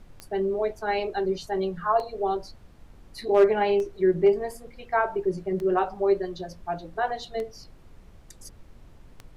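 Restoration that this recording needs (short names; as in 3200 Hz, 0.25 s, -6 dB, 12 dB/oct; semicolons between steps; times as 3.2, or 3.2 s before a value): clip repair -11 dBFS; de-click; noise print and reduce 21 dB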